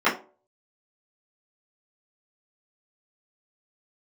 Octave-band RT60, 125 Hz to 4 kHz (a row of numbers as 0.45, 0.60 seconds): 0.30, 0.35, 0.45, 0.35, 0.25, 0.20 seconds